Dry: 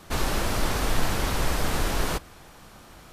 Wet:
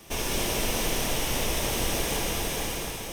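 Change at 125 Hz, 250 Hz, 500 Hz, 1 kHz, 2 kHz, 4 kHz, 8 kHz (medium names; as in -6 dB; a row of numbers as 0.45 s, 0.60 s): -4.0 dB, -1.0 dB, +1.0 dB, -3.0 dB, -0.5 dB, +3.5 dB, +5.5 dB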